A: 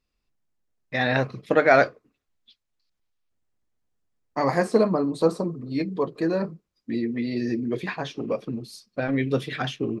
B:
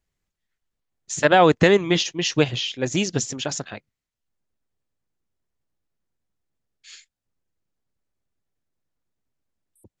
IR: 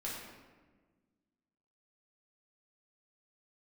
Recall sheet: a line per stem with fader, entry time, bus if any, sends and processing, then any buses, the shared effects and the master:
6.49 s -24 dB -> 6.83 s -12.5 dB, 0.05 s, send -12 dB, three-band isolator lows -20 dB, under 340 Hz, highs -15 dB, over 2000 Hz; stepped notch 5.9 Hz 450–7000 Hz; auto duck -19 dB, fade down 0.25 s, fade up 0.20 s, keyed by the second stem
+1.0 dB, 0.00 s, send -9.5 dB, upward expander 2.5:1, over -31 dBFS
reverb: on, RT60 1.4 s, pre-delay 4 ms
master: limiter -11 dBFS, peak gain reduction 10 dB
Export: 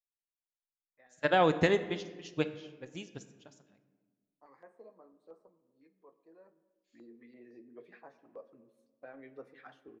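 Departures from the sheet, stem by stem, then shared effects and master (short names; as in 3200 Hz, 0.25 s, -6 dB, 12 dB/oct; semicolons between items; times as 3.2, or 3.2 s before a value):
stem A -24.0 dB -> -32.5 dB; stem B +1.0 dB -> -10.5 dB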